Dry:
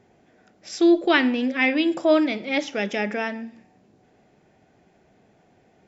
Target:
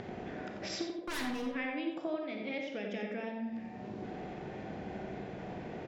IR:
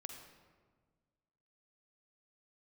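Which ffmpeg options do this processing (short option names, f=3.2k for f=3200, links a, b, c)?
-filter_complex "[0:a]acompressor=mode=upward:threshold=-32dB:ratio=2.5,lowpass=3.9k,asettb=1/sr,asplit=3[a][b][c];[a]atrim=end=0.974[d];[b]atrim=start=0.97:end=1.47,asetpts=PTS-STARTPTS,afade=t=in:d=0.004:c=qsin,afade=t=out:st=0.496:d=0.004:c=qsin,aeval=exprs='0.1*(abs(mod(val(0)/0.1+3,4)-2)-1)':c=same[e];[c]atrim=start=1.466[f];[d][e]acrossfade=d=0.004:c1=hsin:c2=qsin[g];[g][f]acrossfade=d=0.004:c1=qsin:c2=hsin,acompressor=threshold=-35dB:ratio=20,asettb=1/sr,asplit=3[h][i][j];[h]atrim=end=2.494[k];[i]atrim=start=2.49:end=3.43,asetpts=PTS-STARTPTS,afade=t=in:d=0.004:c=qsin,afade=t=out:st=0.936:d=0.004:c=qsin,equalizer=f=1.3k:t=o:w=1.6:g=-4.5[l];[j]atrim=start=3.426[m];[k][l]acrossfade=d=0.004:c1=hsin:c2=qsin[n];[n][m]acrossfade=d=0.004:c1=qsin:c2=hsin,asplit=2[o][p];[p]adelay=89,lowpass=f=2k:p=1,volume=-3dB,asplit=2[q][r];[r]adelay=89,lowpass=f=2k:p=1,volume=0.49,asplit=2[s][t];[t]adelay=89,lowpass=f=2k:p=1,volume=0.49,asplit=2[u][v];[v]adelay=89,lowpass=f=2k:p=1,volume=0.49,asplit=2[w][x];[x]adelay=89,lowpass=f=2k:p=1,volume=0.49,asplit=2[y][z];[z]adelay=89,lowpass=f=2k:p=1,volume=0.49[aa];[o][q][s][u][w][y][aa]amix=inputs=7:normalize=0[ab];[1:a]atrim=start_sample=2205,atrim=end_sample=6615,asetrate=61740,aresample=44100[ac];[ab][ac]afir=irnorm=-1:irlink=0,volume=8dB"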